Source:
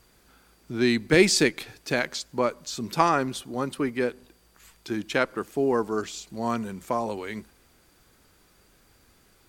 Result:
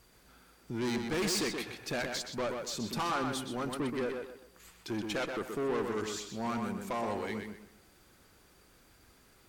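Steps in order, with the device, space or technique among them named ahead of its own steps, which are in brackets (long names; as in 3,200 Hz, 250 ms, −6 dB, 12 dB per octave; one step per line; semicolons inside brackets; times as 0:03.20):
rockabilly slapback (tube saturation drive 28 dB, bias 0.3; tape delay 125 ms, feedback 35%, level −3 dB, low-pass 3,700 Hz)
level −2 dB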